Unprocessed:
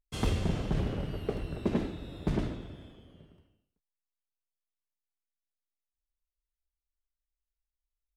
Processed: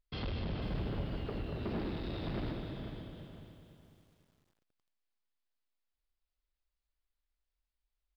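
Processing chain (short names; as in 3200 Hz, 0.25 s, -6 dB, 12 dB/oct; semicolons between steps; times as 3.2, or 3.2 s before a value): 1.61–2.53 zero-crossing step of -42.5 dBFS; in parallel at +2 dB: compressor 5:1, threshold -39 dBFS, peak gain reduction 14.5 dB; on the sum: soft clip -28.5 dBFS, distortion -8 dB; on a send: feedback echo 0.201 s, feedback 45%, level -8 dB; on the sum: downsampling 11025 Hz; lo-fi delay 0.497 s, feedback 35%, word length 10-bit, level -10 dB; gain -5 dB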